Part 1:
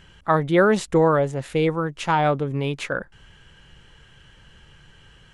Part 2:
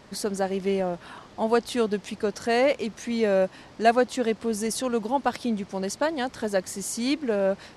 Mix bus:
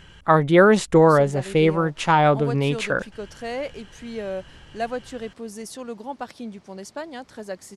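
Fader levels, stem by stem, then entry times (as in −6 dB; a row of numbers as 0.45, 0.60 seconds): +3.0, −8.0 decibels; 0.00, 0.95 seconds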